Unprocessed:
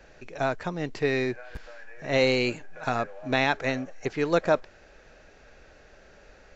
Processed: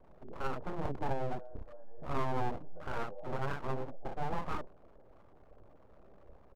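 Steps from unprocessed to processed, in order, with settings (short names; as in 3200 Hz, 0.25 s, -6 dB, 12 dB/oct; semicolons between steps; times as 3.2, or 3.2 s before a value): inverse Chebyshev low-pass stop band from 2100 Hz, stop band 50 dB; bell 520 Hz -2.5 dB 1.1 oct; limiter -22.5 dBFS, peak gain reduction 8 dB; 1.97–2.37 doubler 21 ms -7 dB; early reflections 30 ms -4.5 dB, 59 ms -5 dB; full-wave rectifier; 0.85–1.39 three-band squash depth 70%; gain -3.5 dB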